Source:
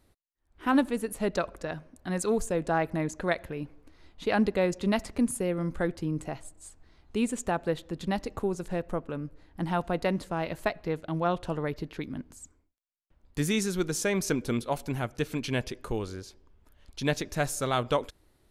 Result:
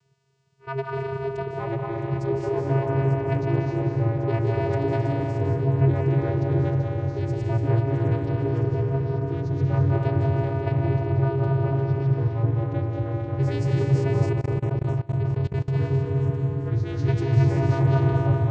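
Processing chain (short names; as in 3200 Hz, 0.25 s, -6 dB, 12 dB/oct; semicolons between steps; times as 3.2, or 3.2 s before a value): low-pass opened by the level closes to 1600 Hz, open at -22.5 dBFS; reverb RT60 3.3 s, pre-delay 0.147 s, DRR -2.5 dB; in parallel at -12 dB: requantised 8-bit, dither triangular; on the sum: vocoder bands 8, square 135 Hz; on a send: thin delay 0.663 s, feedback 61%, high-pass 3900 Hz, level -8.5 dB; on the sum: echoes that change speed 0.79 s, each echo -3 st, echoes 2; 14.31–15.74 level quantiser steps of 23 dB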